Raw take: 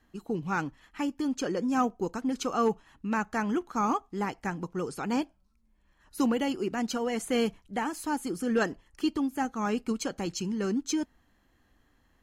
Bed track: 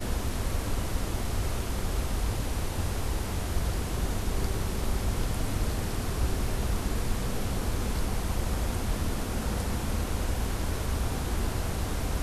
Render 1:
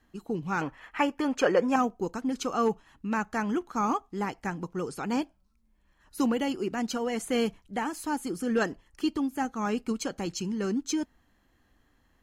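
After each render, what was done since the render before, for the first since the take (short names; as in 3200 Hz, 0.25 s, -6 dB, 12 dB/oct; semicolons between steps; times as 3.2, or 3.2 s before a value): 0.61–1.76 band shelf 1100 Hz +11 dB 3 oct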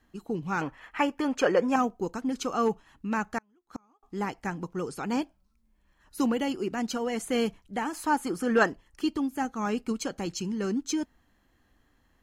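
3.38–4.03 flipped gate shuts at -24 dBFS, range -38 dB; 7.93–8.7 bell 1100 Hz +8 dB 2.2 oct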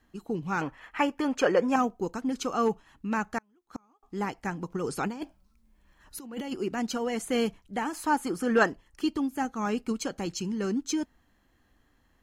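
4.7–6.54 negative-ratio compressor -32 dBFS, ratio -0.5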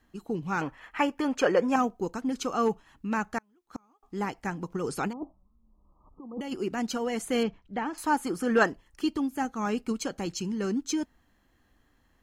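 5.13–6.41 brick-wall FIR low-pass 1300 Hz; 7.43–7.98 air absorption 180 m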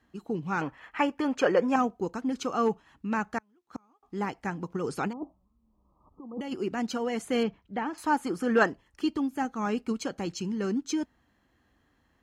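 HPF 57 Hz; high shelf 7600 Hz -9.5 dB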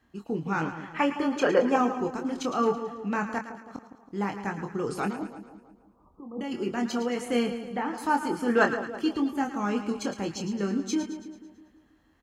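doubler 25 ms -6 dB; on a send: split-band echo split 1000 Hz, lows 0.162 s, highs 0.11 s, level -10 dB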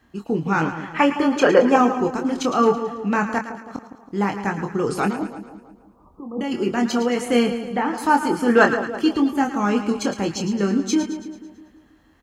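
gain +8 dB; limiter -2 dBFS, peak gain reduction 1.5 dB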